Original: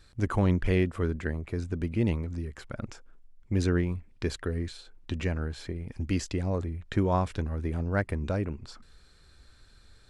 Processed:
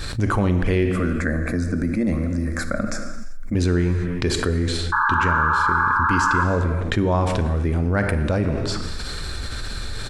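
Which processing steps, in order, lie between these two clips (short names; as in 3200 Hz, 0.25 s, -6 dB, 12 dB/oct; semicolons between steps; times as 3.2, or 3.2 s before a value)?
0.86–3.55 fixed phaser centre 600 Hz, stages 8; 4.92–6.44 painted sound noise 850–1700 Hz -26 dBFS; speakerphone echo 0.22 s, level -24 dB; non-linear reverb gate 0.42 s falling, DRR 8 dB; fast leveller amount 70%; gain +3.5 dB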